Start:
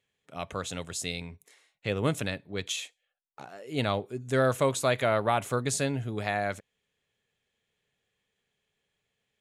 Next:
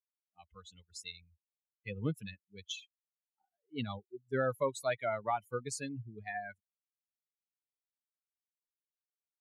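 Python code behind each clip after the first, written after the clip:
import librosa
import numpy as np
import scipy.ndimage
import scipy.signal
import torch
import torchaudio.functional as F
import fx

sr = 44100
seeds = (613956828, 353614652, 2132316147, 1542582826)

y = fx.bin_expand(x, sr, power=3.0)
y = scipy.signal.sosfilt(scipy.signal.butter(2, 77.0, 'highpass', fs=sr, output='sos'), y)
y = fx.high_shelf(y, sr, hz=9300.0, db=-9.5)
y = y * 10.0 ** (-2.5 / 20.0)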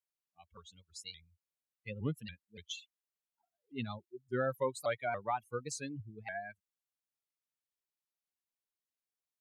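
y = fx.vibrato_shape(x, sr, shape='saw_up', rate_hz=3.5, depth_cents=160.0)
y = y * 10.0 ** (-1.5 / 20.0)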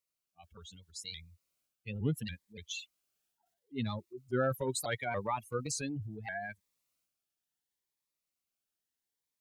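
y = fx.transient(x, sr, attack_db=-1, sustain_db=7)
y = fx.notch_cascade(y, sr, direction='rising', hz=0.73)
y = y * 10.0 ** (4.5 / 20.0)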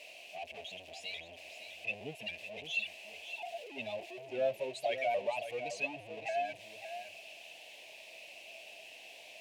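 y = x + 0.5 * 10.0 ** (-35.0 / 20.0) * np.sign(x)
y = fx.double_bandpass(y, sr, hz=1300.0, octaves=2.0)
y = y + 10.0 ** (-10.0 / 20.0) * np.pad(y, (int(562 * sr / 1000.0), 0))[:len(y)]
y = y * 10.0 ** (7.5 / 20.0)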